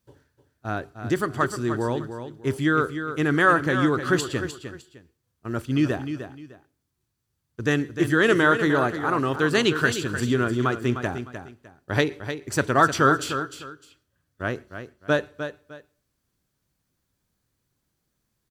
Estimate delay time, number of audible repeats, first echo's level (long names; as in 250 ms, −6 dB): 304 ms, 2, −9.5 dB